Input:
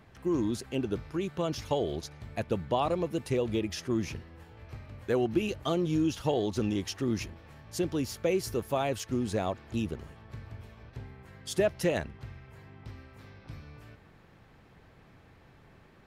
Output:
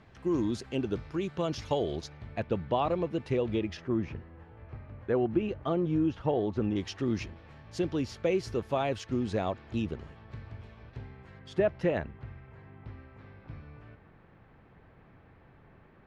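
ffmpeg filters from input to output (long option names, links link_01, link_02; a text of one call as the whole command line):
ffmpeg -i in.wav -af "asetnsamples=nb_out_samples=441:pad=0,asendcmd='2.11 lowpass f 3400;3.77 lowpass f 1800;6.76 lowpass f 4400;11.39 lowpass f 2200',lowpass=6200" out.wav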